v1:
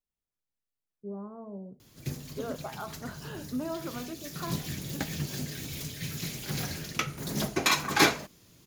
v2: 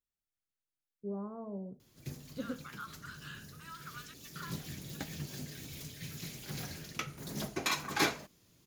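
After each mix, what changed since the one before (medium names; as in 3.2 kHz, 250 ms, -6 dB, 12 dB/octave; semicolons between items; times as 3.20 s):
second voice: add steep high-pass 1.2 kHz 48 dB/octave; background -8.0 dB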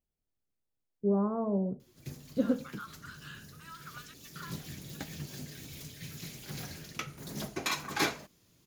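first voice +11.5 dB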